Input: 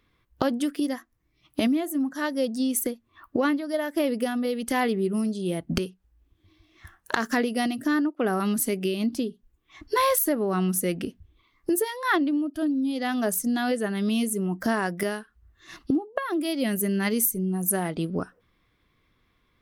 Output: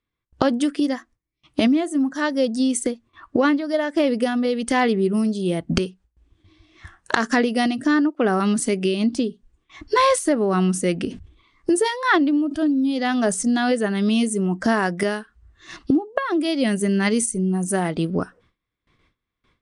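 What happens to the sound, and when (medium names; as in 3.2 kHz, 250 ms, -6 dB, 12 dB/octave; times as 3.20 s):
11.08–13.62 s: decay stretcher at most 110 dB/s
whole clip: steep low-pass 9.6 kHz 72 dB/octave; gate with hold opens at -56 dBFS; trim +5.5 dB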